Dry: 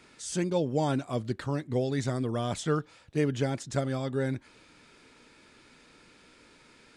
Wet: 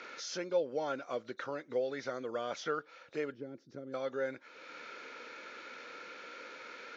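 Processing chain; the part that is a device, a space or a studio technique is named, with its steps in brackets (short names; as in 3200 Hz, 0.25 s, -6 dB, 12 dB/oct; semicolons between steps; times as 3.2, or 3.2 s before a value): 3.34–3.94 EQ curve 350 Hz 0 dB, 590 Hz -17 dB, 1100 Hz -22 dB; hearing aid with frequency lowering (nonlinear frequency compression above 3500 Hz 1.5:1; compressor 2:1, threshold -52 dBFS, peak gain reduction 16 dB; speaker cabinet 370–6600 Hz, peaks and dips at 520 Hz +10 dB, 1400 Hz +10 dB, 2200 Hz +5 dB); gain +6 dB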